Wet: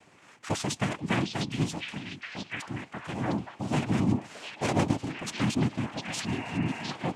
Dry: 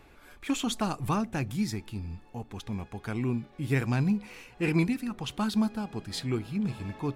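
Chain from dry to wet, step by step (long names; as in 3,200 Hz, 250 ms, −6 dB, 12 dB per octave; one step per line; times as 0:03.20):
cochlear-implant simulation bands 4
echo through a band-pass that steps 706 ms, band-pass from 3,500 Hz, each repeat −0.7 octaves, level 0 dB
healed spectral selection 0:06.30–0:06.83, 410–2,900 Hz after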